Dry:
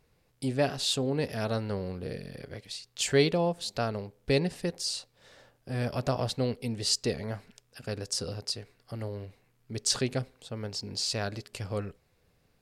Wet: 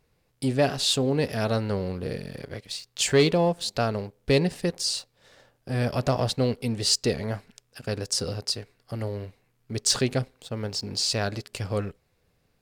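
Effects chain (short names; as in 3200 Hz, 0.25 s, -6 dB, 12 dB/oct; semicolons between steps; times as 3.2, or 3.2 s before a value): sample leveller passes 1; gain +1.5 dB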